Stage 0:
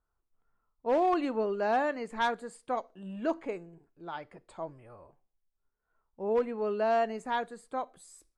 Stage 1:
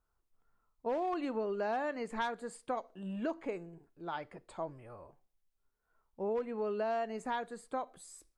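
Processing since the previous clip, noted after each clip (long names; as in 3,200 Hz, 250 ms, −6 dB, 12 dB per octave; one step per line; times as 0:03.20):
downward compressor 4 to 1, threshold −34 dBFS, peak gain reduction 9.5 dB
level +1 dB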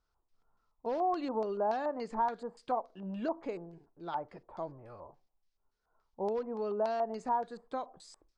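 dynamic equaliser 2,300 Hz, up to −5 dB, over −56 dBFS, Q 1.2
auto-filter low-pass square 3.5 Hz 910–5,000 Hz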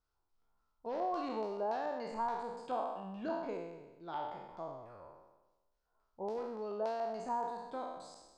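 peak hold with a decay on every bin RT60 1.12 s
level −6.5 dB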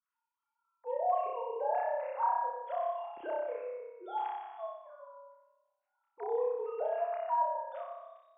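three sine waves on the formant tracks
flutter between parallel walls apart 5.2 metres, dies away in 0.89 s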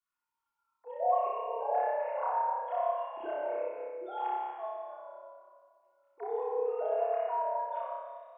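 rectangular room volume 3,700 cubic metres, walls mixed, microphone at 3.3 metres
level −3 dB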